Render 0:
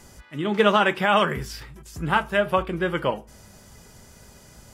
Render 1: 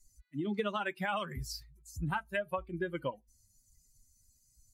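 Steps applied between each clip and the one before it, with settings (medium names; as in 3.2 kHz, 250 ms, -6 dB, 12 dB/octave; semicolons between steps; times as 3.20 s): expander on every frequency bin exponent 2; compression 6:1, threshold -30 dBFS, peak gain reduction 14 dB; trim -1.5 dB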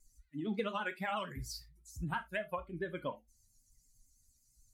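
vibrato 8.9 Hz 98 cents; gated-style reverb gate 100 ms falling, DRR 8.5 dB; trim -3 dB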